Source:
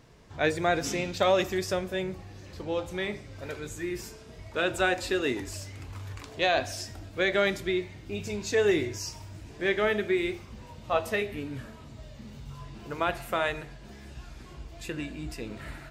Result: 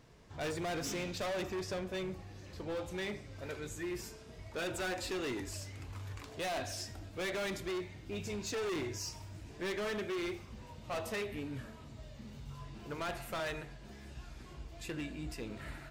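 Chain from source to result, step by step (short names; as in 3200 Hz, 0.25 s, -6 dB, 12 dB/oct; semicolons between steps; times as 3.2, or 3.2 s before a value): 1.29–1.92 high shelf 4400 Hz -> 8700 Hz -11 dB; hard clip -30 dBFS, distortion -5 dB; gain -4.5 dB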